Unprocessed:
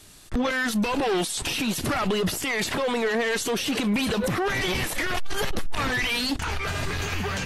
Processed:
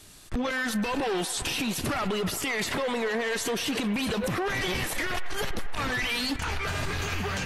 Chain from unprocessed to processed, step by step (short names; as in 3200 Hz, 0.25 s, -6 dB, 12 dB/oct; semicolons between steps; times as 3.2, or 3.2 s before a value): rattling part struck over -32 dBFS, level -38 dBFS; compressor, threshold -24 dBFS, peak gain reduction 4.5 dB; on a send: band-limited delay 0.128 s, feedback 77%, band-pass 1200 Hz, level -12.5 dB; on the sum: gain -1 dB